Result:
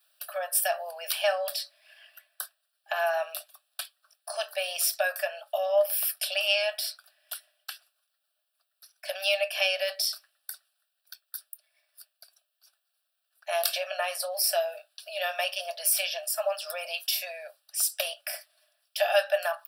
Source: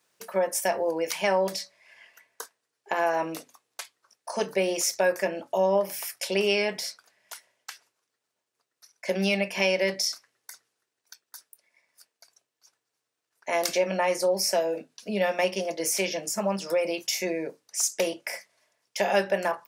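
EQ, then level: rippled Chebyshev high-pass 590 Hz, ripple 3 dB; high shelf 5100 Hz +12 dB; fixed phaser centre 1400 Hz, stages 8; +3.0 dB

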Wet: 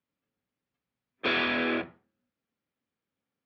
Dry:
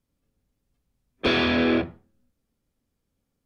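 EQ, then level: BPF 140–2300 Hz; tilt shelf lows -7 dB, about 1100 Hz; -3.0 dB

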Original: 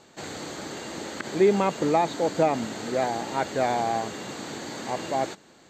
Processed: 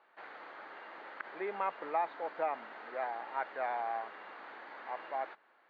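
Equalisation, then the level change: HPF 1200 Hz 12 dB/oct; LPF 1600 Hz 12 dB/oct; air absorption 290 m; 0.0 dB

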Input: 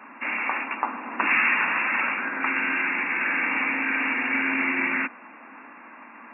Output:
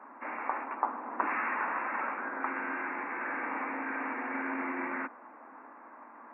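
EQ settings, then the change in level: Gaussian blur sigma 6.4 samples; HPF 390 Hz 12 dB/oct; 0.0 dB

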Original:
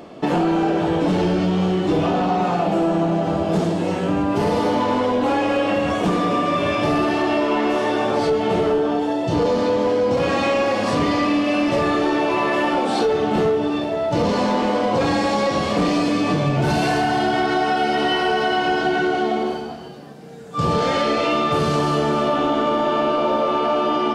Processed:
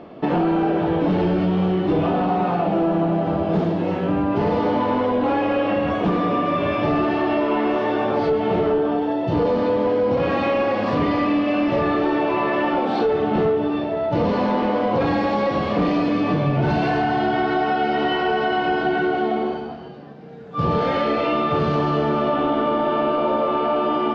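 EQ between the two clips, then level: air absorption 270 m; 0.0 dB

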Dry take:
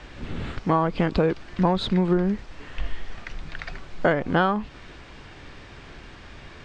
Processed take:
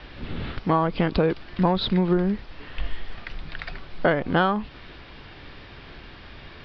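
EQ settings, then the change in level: steep low-pass 5300 Hz 72 dB/oct; bell 3500 Hz +3 dB 0.77 oct; 0.0 dB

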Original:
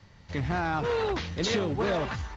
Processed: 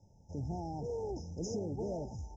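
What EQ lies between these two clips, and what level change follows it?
dynamic EQ 990 Hz, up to -6 dB, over -43 dBFS, Q 0.77; brick-wall FIR band-stop 930–5000 Hz; -7.5 dB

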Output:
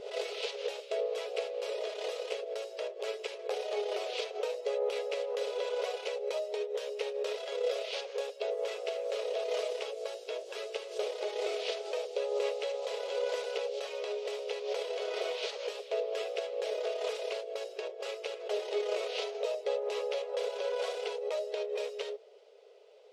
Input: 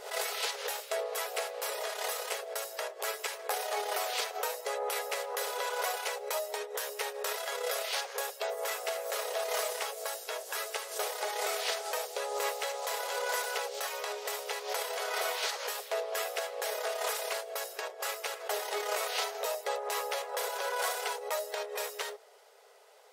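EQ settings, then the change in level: tape spacing loss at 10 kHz 29 dB; band shelf 1200 Hz -14.5 dB; +7.0 dB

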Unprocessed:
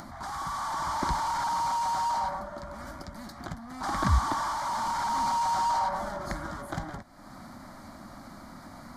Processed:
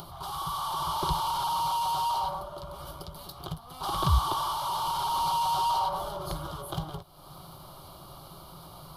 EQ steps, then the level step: EQ curve 110 Hz 0 dB, 160 Hz +7 dB, 230 Hz -22 dB, 400 Hz +8 dB, 630 Hz -2 dB, 1200 Hz +1 dB, 1900 Hz -20 dB, 2900 Hz +13 dB, 7200 Hz -7 dB, 11000 Hz +12 dB; 0.0 dB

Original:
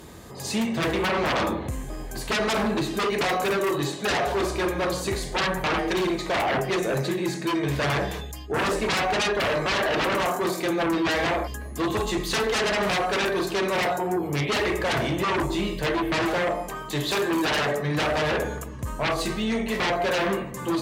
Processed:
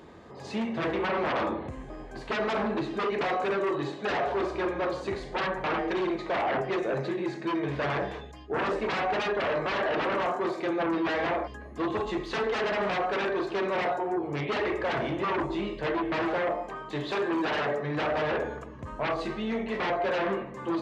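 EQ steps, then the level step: tape spacing loss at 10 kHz 29 dB; low shelf 190 Hz -11 dB; notches 60/120/180 Hz; 0.0 dB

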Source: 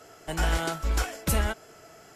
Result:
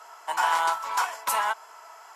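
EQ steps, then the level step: resonant high-pass 970 Hz, resonance Q 11; 0.0 dB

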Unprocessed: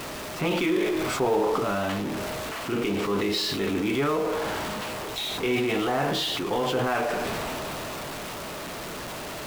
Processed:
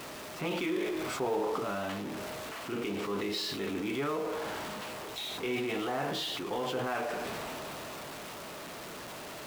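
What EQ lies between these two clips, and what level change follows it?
low shelf 76 Hz -10 dB; -7.5 dB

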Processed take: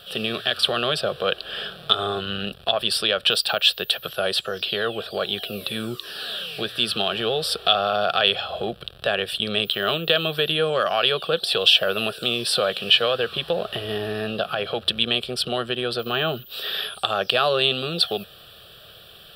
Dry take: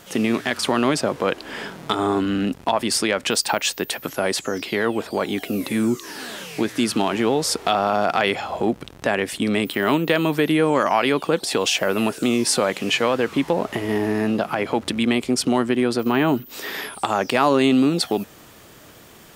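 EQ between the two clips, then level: bell 3400 Hz +11 dB 0.94 oct; fixed phaser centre 1400 Hz, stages 8; -1.0 dB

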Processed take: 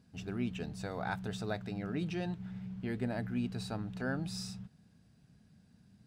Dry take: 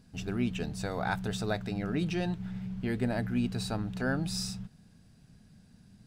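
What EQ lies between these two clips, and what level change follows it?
HPF 57 Hz; high shelf 5300 Hz -5 dB; -5.0 dB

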